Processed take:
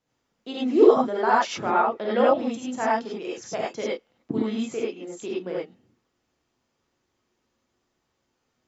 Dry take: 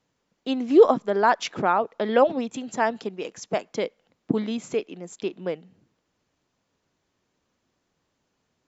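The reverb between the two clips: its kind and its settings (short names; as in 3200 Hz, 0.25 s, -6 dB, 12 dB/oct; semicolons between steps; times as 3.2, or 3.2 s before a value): non-linear reverb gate 0.12 s rising, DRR -6 dB; gain -7 dB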